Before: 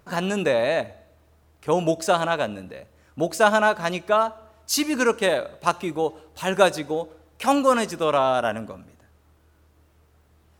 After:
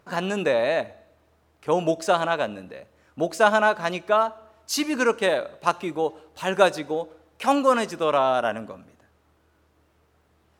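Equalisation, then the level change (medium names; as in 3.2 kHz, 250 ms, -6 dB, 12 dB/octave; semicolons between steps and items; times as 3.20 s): bass shelf 110 Hz -11.5 dB; treble shelf 6.4 kHz -7.5 dB; 0.0 dB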